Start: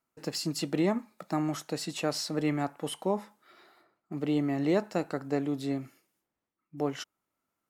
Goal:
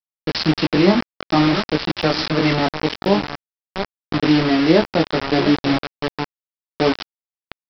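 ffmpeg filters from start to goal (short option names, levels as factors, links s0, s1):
-filter_complex "[0:a]lowshelf=f=130:t=q:w=1.5:g=-9,bandreject=f=112.3:t=h:w=4,bandreject=f=224.6:t=h:w=4,bandreject=f=336.9:t=h:w=4,bandreject=f=449.2:t=h:w=4,bandreject=f=561.5:t=h:w=4,bandreject=f=673.8:t=h:w=4,bandreject=f=786.1:t=h:w=4,bandreject=f=898.4:t=h:w=4,bandreject=f=1010.7:t=h:w=4,bandreject=f=1123:t=h:w=4,bandreject=f=1235.3:t=h:w=4,bandreject=f=1347.6:t=h:w=4,bandreject=f=1459.9:t=h:w=4,bandreject=f=1572.2:t=h:w=4,bandreject=f=1684.5:t=h:w=4,bandreject=f=1796.8:t=h:w=4,asplit=2[s0][s1];[s1]adelay=698,lowpass=f=4200:p=1,volume=0.251,asplit=2[s2][s3];[s3]adelay=698,lowpass=f=4200:p=1,volume=0.21,asplit=2[s4][s5];[s5]adelay=698,lowpass=f=4200:p=1,volume=0.21[s6];[s2][s4][s6]amix=inputs=3:normalize=0[s7];[s0][s7]amix=inputs=2:normalize=0,flanger=delay=18.5:depth=2.2:speed=0.42,aresample=11025,acrusher=bits=5:mix=0:aa=0.000001,aresample=44100,dynaudnorm=f=170:g=3:m=6.68"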